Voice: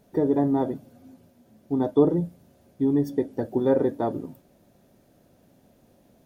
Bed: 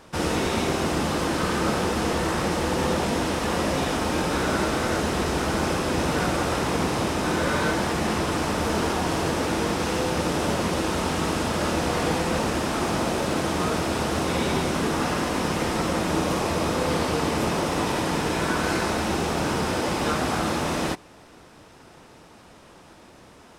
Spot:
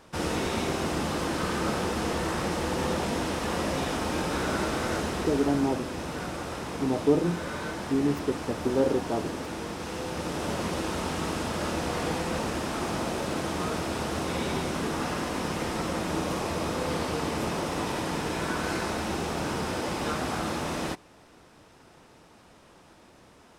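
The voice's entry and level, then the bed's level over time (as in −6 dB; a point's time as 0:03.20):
5.10 s, −3.5 dB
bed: 0:04.96 −4.5 dB
0:05.77 −10.5 dB
0:09.78 −10.5 dB
0:10.63 −5.5 dB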